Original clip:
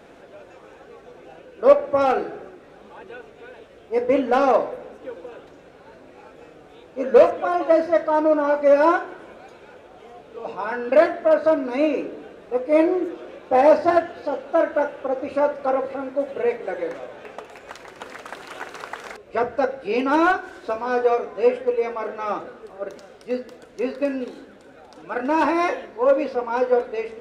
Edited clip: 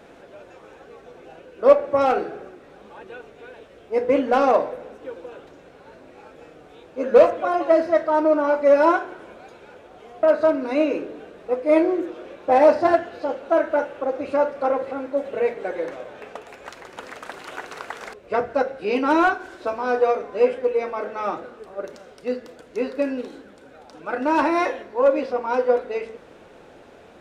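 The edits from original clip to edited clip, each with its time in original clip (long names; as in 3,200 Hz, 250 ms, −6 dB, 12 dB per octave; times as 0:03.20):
0:10.23–0:11.26: remove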